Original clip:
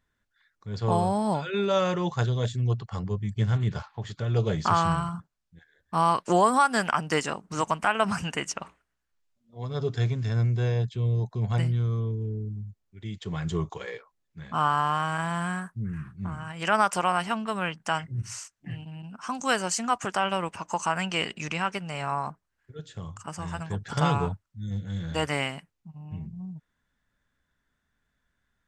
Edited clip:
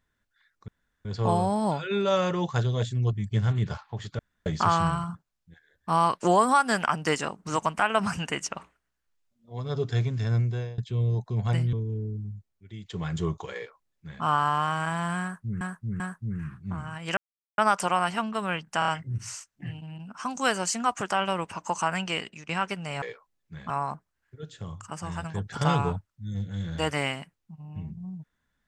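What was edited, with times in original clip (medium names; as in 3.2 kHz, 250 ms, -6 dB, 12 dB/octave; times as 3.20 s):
0.68 s: insert room tone 0.37 s
2.76–3.18 s: delete
4.24–4.51 s: room tone
10.45–10.83 s: fade out, to -22 dB
11.78–12.05 s: delete
12.60–13.18 s: fade out, to -6.5 dB
13.87–14.55 s: copy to 22.06 s
15.54–15.93 s: loop, 3 plays
16.71 s: insert silence 0.41 s
17.92 s: stutter 0.03 s, 4 plays
20.89–21.53 s: fade out equal-power, to -20.5 dB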